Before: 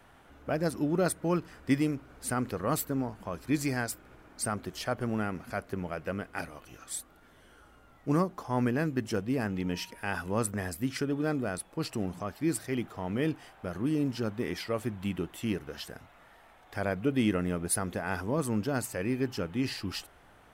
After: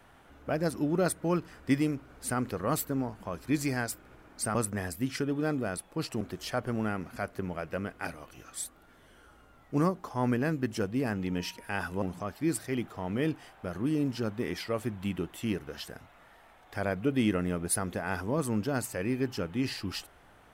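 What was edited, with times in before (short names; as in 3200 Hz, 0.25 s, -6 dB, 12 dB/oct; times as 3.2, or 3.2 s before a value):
10.36–12.02 move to 4.55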